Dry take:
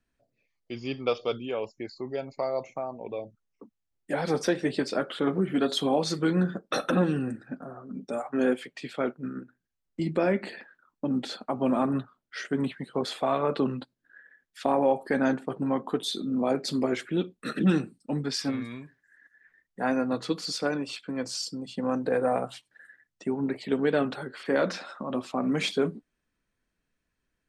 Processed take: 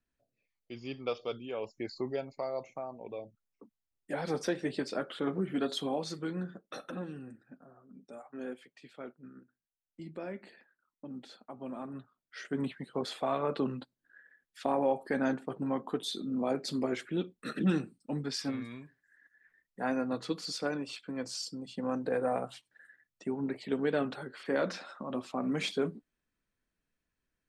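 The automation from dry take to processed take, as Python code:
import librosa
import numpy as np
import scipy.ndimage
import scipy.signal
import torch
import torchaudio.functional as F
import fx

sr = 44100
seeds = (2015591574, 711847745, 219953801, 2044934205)

y = fx.gain(x, sr, db=fx.line((1.49, -7.5), (1.98, 1.5), (2.34, -6.5), (5.65, -6.5), (6.87, -16.0), (11.91, -16.0), (12.58, -5.5)))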